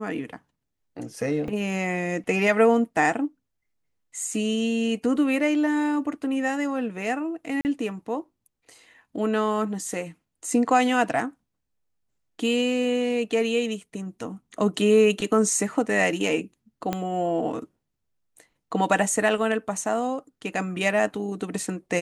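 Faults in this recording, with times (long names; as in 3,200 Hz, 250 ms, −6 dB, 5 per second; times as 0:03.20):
0:01.48: drop-out 2.8 ms
0:07.61–0:07.65: drop-out 39 ms
0:16.93: click −12 dBFS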